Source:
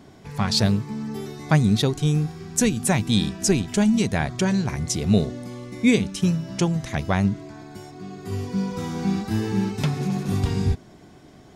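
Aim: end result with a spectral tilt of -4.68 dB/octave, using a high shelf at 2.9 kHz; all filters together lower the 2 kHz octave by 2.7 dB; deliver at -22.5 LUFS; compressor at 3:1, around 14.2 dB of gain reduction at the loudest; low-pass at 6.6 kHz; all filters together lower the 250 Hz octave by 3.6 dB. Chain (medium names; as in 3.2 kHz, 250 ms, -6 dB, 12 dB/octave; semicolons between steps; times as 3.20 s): low-pass 6.6 kHz; peaking EQ 250 Hz -5 dB; peaking EQ 2 kHz -6 dB; treble shelf 2.9 kHz +6.5 dB; compression 3:1, threshold -36 dBFS; trim +14 dB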